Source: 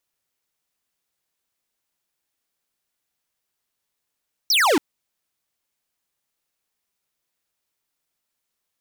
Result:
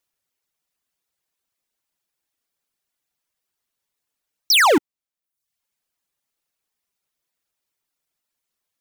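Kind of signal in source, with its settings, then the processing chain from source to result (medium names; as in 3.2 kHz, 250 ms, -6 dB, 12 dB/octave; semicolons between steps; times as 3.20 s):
laser zap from 6 kHz, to 260 Hz, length 0.28 s square, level -17 dB
reverb removal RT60 0.65 s; in parallel at -5 dB: bit crusher 6-bit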